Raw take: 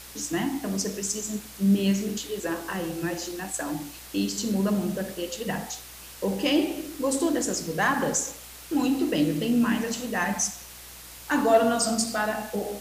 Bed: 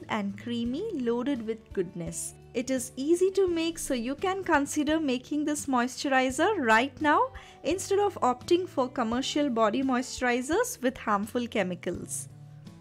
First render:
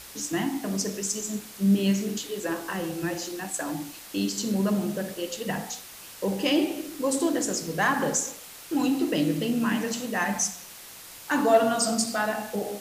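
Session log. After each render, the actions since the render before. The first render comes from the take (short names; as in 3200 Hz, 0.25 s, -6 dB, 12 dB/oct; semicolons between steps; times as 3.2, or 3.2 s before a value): de-hum 60 Hz, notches 8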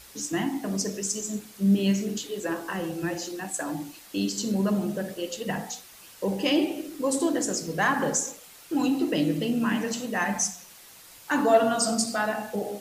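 denoiser 6 dB, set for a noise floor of -45 dBFS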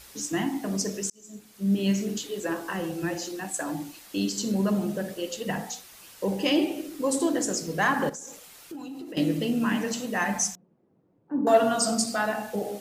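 1.1–1.98 fade in; 8.09–9.17 compressor 8:1, threshold -36 dBFS; 10.55–11.47 Butterworth band-pass 220 Hz, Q 0.79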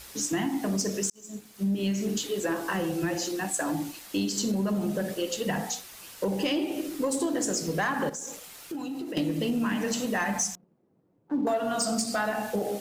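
compressor 10:1, threshold -27 dBFS, peak gain reduction 13.5 dB; sample leveller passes 1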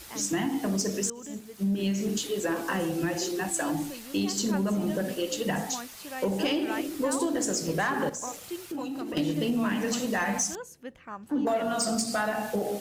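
add bed -14 dB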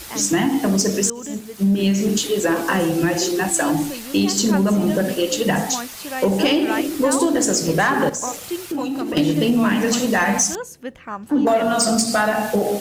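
gain +10 dB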